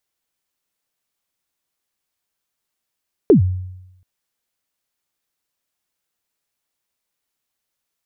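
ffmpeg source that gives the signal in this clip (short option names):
-f lavfi -i "aevalsrc='0.596*pow(10,-3*t/0.9)*sin(2*PI*(470*0.113/log(92/470)*(exp(log(92/470)*min(t,0.113)/0.113)-1)+92*max(t-0.113,0)))':d=0.73:s=44100"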